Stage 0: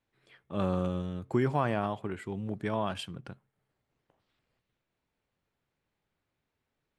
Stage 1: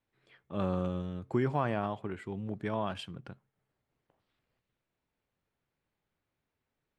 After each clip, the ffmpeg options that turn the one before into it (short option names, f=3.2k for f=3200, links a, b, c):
-af "highshelf=f=7.9k:g=-10.5,volume=-2dB"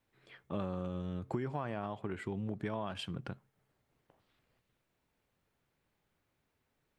-af "acompressor=threshold=-39dB:ratio=6,volume=5dB"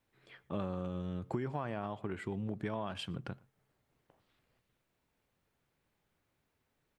-filter_complex "[0:a]asplit=2[a][b];[b]adelay=116.6,volume=-26dB,highshelf=f=4k:g=-2.62[c];[a][c]amix=inputs=2:normalize=0"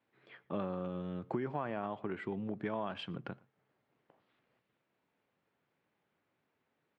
-af "highpass=170,lowpass=3k,volume=1.5dB"